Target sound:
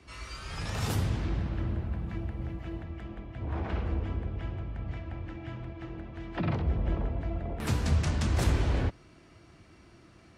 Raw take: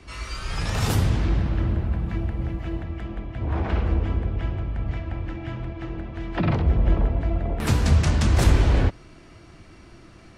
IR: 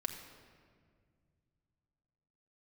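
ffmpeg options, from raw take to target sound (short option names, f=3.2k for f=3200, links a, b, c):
-af "highpass=50,volume=-7.5dB"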